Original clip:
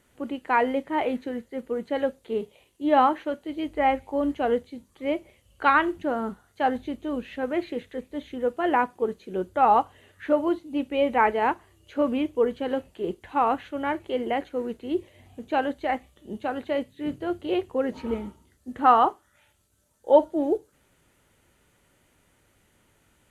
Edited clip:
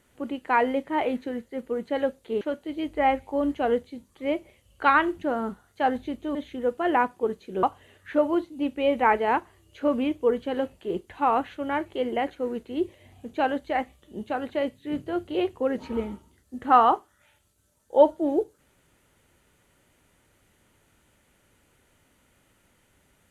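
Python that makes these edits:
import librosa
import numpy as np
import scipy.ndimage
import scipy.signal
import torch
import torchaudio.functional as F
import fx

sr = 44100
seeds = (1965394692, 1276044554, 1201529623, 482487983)

y = fx.edit(x, sr, fx.cut(start_s=2.41, length_s=0.8),
    fx.cut(start_s=7.15, length_s=0.99),
    fx.cut(start_s=9.42, length_s=0.35), tone=tone)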